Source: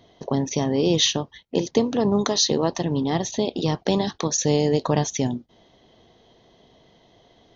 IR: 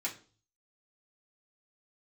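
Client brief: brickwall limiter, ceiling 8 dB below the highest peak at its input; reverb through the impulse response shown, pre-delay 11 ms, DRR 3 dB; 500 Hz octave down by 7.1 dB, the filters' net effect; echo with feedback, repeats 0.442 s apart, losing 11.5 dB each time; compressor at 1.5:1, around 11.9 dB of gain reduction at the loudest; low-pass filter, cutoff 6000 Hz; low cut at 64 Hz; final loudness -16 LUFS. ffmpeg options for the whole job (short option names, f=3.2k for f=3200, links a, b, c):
-filter_complex "[0:a]highpass=64,lowpass=6k,equalizer=f=500:t=o:g=-9,acompressor=threshold=-52dB:ratio=1.5,alimiter=level_in=3dB:limit=-24dB:level=0:latency=1,volume=-3dB,aecho=1:1:442|884|1326:0.266|0.0718|0.0194,asplit=2[a][b];[1:a]atrim=start_sample=2205,adelay=11[c];[b][c]afir=irnorm=-1:irlink=0,volume=-6dB[d];[a][d]amix=inputs=2:normalize=0,volume=20.5dB"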